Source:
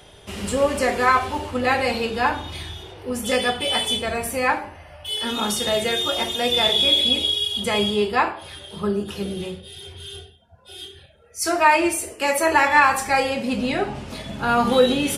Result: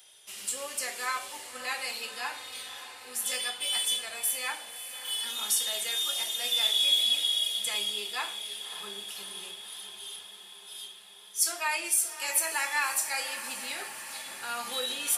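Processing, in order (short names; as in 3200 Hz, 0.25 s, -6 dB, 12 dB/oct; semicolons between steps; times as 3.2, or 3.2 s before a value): differentiator; diffused feedback echo 0.585 s, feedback 70%, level -12 dB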